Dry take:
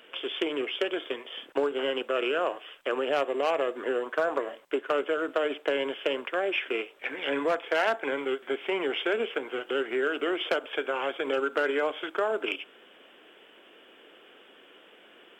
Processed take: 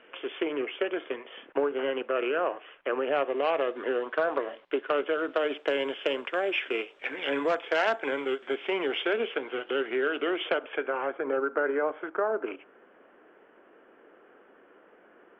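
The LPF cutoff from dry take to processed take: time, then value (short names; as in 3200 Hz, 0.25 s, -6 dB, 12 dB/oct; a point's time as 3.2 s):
LPF 24 dB/oct
3.04 s 2500 Hz
3.63 s 4000 Hz
5.02 s 4000 Hz
5.7 s 7000 Hz
8.42 s 7000 Hz
9.61 s 3900 Hz
10.27 s 3900 Hz
11.17 s 1700 Hz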